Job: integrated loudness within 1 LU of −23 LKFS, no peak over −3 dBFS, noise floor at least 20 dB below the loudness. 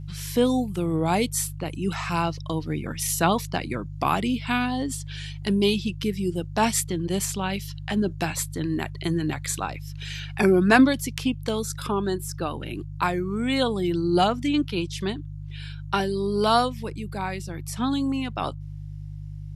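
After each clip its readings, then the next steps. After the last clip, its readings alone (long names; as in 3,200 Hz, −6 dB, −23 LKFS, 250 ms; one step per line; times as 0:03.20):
mains hum 50 Hz; hum harmonics up to 150 Hz; level of the hum −34 dBFS; integrated loudness −25.5 LKFS; sample peak −3.5 dBFS; target loudness −23.0 LKFS
→ hum removal 50 Hz, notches 3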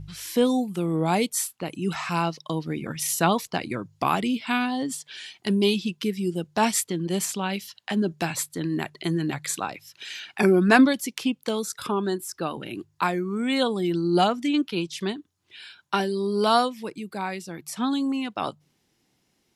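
mains hum none found; integrated loudness −25.5 LKFS; sample peak −3.5 dBFS; target loudness −23.0 LKFS
→ level +2.5 dB
brickwall limiter −3 dBFS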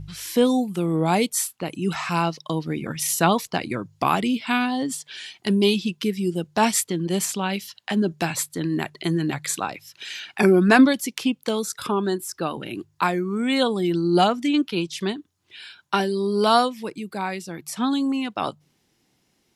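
integrated loudness −23.0 LKFS; sample peak −3.0 dBFS; background noise floor −68 dBFS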